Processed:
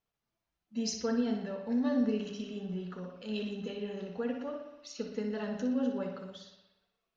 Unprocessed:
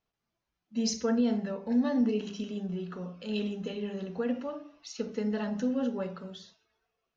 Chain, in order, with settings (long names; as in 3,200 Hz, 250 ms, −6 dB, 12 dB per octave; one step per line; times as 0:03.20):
bucket-brigade delay 60 ms, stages 2,048, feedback 63%, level −7 dB
level −3.5 dB